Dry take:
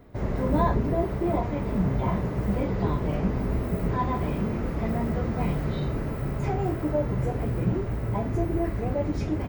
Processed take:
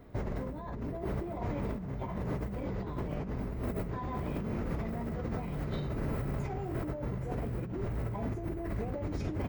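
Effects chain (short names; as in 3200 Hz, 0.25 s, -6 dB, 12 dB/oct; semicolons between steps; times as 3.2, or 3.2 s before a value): negative-ratio compressor -30 dBFS, ratio -1; gain -5.5 dB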